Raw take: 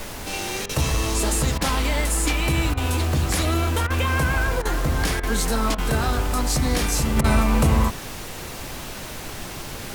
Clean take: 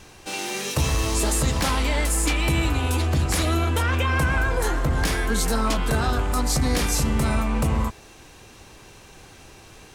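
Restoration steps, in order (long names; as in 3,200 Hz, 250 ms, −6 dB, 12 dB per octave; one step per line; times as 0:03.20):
repair the gap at 0:00.66/0:01.58/0:02.74/0:03.87/0:04.62/0:05.20/0:05.75/0:07.21, 31 ms
noise reduction from a noise print 13 dB
level 0 dB, from 0:07.17 −4.5 dB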